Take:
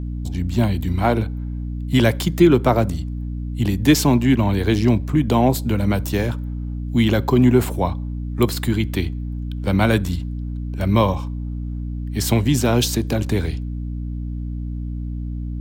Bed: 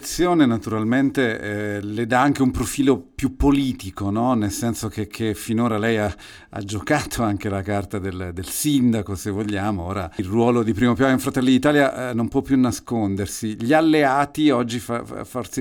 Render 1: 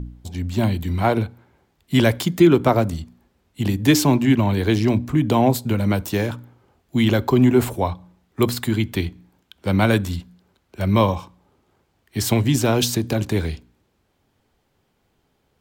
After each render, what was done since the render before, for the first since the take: de-hum 60 Hz, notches 5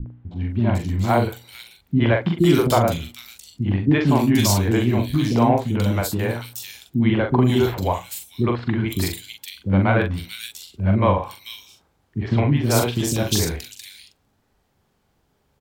doubler 42 ms -5 dB; three bands offset in time lows, mids, highs 60/500 ms, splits 350/2800 Hz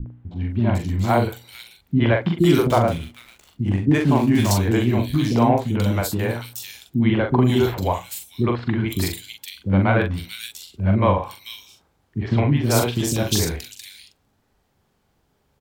2.65–4.51 median filter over 9 samples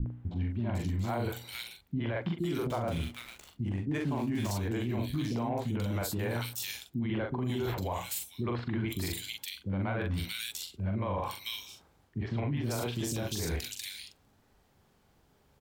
reverse; compressor 6:1, threshold -26 dBFS, peak gain reduction 14.5 dB; reverse; limiter -24.5 dBFS, peak gain reduction 8.5 dB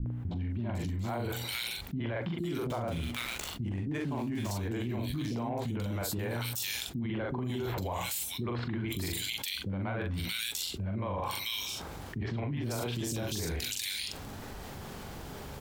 limiter -28.5 dBFS, peak gain reduction 4 dB; fast leveller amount 70%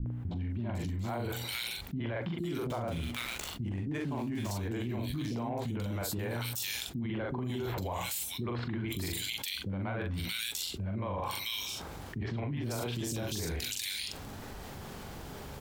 gain -1 dB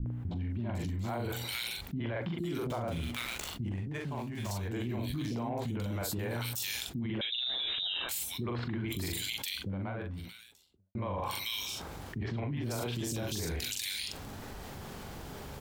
3.75–4.73 bell 290 Hz -9 dB 0.56 oct; 7.21–8.09 inverted band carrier 3800 Hz; 9.46–10.95 studio fade out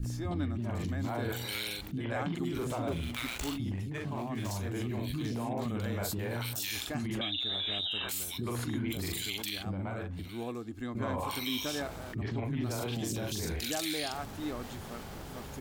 add bed -21 dB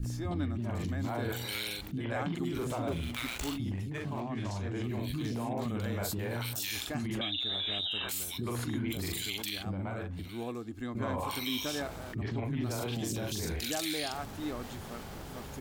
4.2–4.84 air absorption 85 m

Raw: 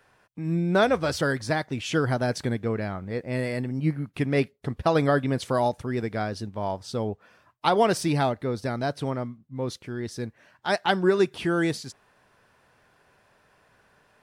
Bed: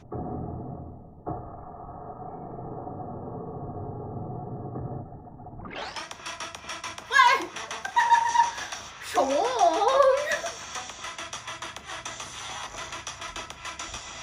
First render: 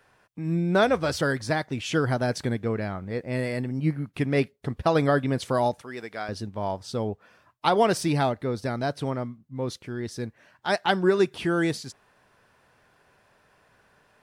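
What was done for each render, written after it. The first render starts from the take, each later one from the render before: 5.79–6.29 HPF 910 Hz 6 dB/oct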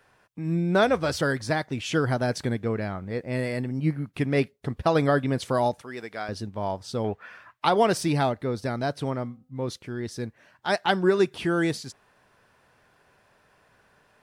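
7.04–7.65 bell 1800 Hz +14.5 dB 1.9 oct; 9.22–9.68 de-hum 254.3 Hz, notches 5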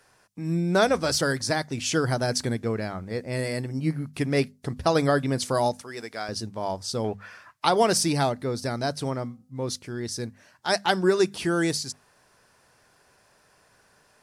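band shelf 7400 Hz +9.5 dB; notches 50/100/150/200/250 Hz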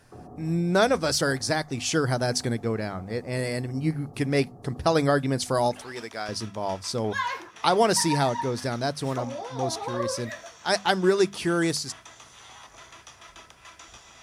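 add bed -11 dB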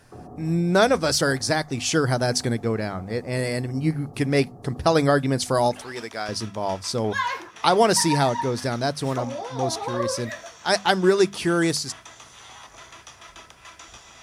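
gain +3 dB

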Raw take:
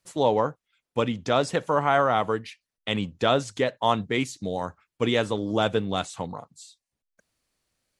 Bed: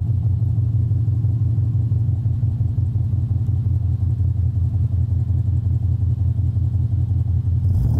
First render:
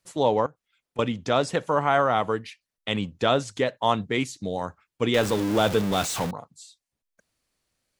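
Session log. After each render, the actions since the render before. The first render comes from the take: 0.46–0.99 compressor 3:1, threshold -46 dBFS; 5.14–6.31 zero-crossing step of -26 dBFS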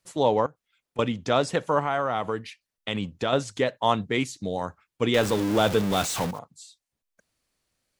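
1.79–3.33 compressor 2:1, threshold -24 dBFS; 5.9–6.39 block floating point 5-bit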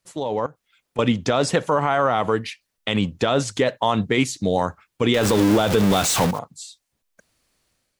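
limiter -17 dBFS, peak gain reduction 9 dB; AGC gain up to 9 dB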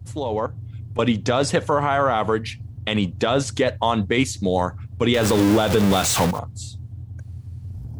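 add bed -16 dB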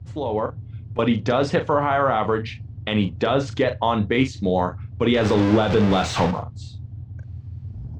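air absorption 170 m; doubler 38 ms -8.5 dB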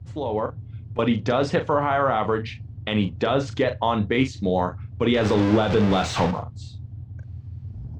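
gain -1.5 dB

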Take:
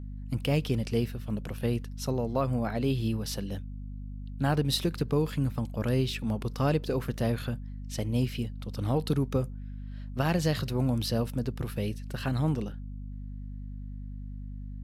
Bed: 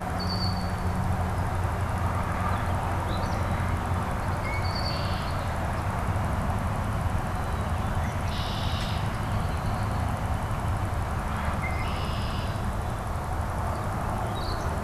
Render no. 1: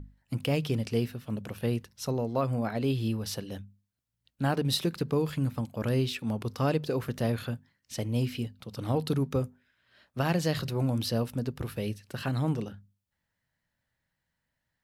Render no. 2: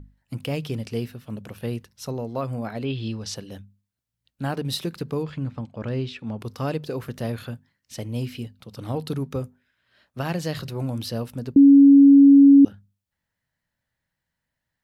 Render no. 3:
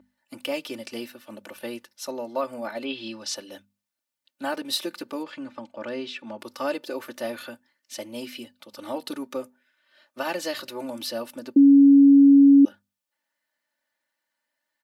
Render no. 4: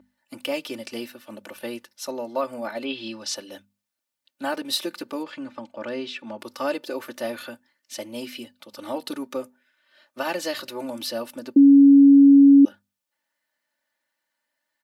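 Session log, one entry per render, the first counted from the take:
notches 50/100/150/200/250 Hz
2.83–3.34 synth low-pass 2600 Hz -> 7400 Hz, resonance Q 1.8; 5.23–6.39 air absorption 130 m; 11.56–12.65 bleep 279 Hz -7.5 dBFS
HPF 410 Hz 12 dB/oct; comb 3.4 ms, depth 91%
gain +1.5 dB

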